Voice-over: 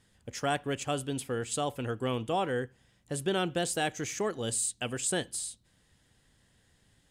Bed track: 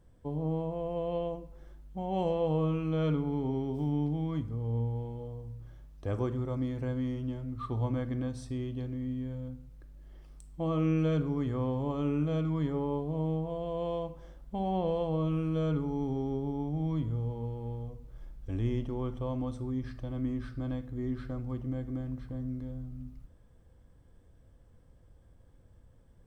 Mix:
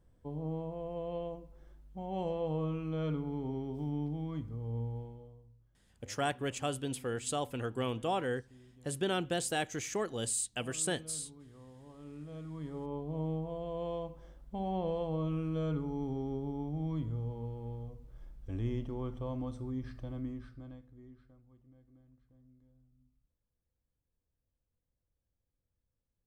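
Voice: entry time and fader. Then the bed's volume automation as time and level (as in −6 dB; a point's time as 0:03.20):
5.75 s, −3.0 dB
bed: 0:04.98 −5.5 dB
0:05.72 −23 dB
0:11.74 −23 dB
0:13.16 −4 dB
0:20.11 −4 dB
0:21.45 −27 dB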